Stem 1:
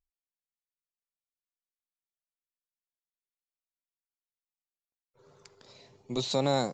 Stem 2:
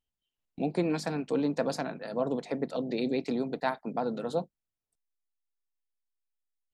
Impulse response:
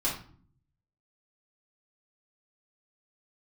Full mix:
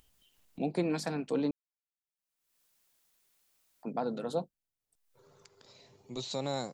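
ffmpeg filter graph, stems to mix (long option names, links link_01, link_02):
-filter_complex "[0:a]volume=-8dB[link_01];[1:a]volume=-2.5dB,asplit=3[link_02][link_03][link_04];[link_02]atrim=end=1.51,asetpts=PTS-STARTPTS,afade=type=out:start_time=1.506:duration=0.004:curve=hsin[link_05];[link_03]atrim=start=1.51:end=3.83,asetpts=PTS-STARTPTS,volume=0[link_06];[link_04]atrim=start=3.83,asetpts=PTS-STARTPTS,afade=type=in:duration=0.004:curve=hsin[link_07];[link_05][link_06][link_07]concat=n=3:v=0:a=1,asplit=2[link_08][link_09];[link_09]apad=whole_len=296913[link_10];[link_01][link_10]sidechaincompress=threshold=-41dB:ratio=8:attack=6.8:release=1190[link_11];[link_11][link_08]amix=inputs=2:normalize=0,acompressor=mode=upward:threshold=-52dB:ratio=2.5,highshelf=frequency=5600:gain=4.5"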